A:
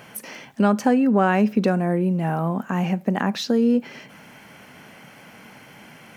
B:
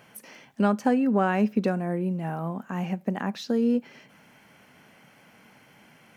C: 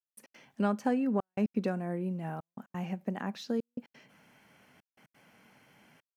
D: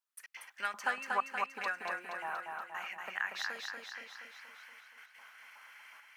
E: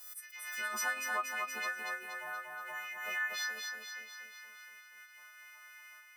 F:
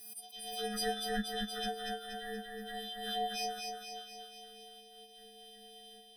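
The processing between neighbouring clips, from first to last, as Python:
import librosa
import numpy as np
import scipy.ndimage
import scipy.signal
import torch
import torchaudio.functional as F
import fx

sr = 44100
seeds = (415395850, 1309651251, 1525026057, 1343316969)

y1 = fx.upward_expand(x, sr, threshold_db=-27.0, expansion=1.5)
y1 = y1 * 10.0 ** (-3.5 / 20.0)
y2 = fx.step_gate(y1, sr, bpm=175, pattern='..x.xxxxxxxxxx', floor_db=-60.0, edge_ms=4.5)
y2 = y2 * 10.0 ** (-6.5 / 20.0)
y3 = fx.filter_lfo_highpass(y2, sr, shape='saw_up', hz=2.7, low_hz=990.0, high_hz=2200.0, q=2.8)
y3 = fx.echo_feedback(y3, sr, ms=237, feedback_pct=57, wet_db=-3.5)
y3 = y3 * 10.0 ** (2.5 / 20.0)
y4 = fx.freq_snap(y3, sr, grid_st=3)
y4 = fx.doubler(y4, sr, ms=13.0, db=-7.5)
y4 = fx.pre_swell(y4, sr, db_per_s=44.0)
y4 = y4 * 10.0 ** (-6.5 / 20.0)
y5 = fx.band_swap(y4, sr, width_hz=1000)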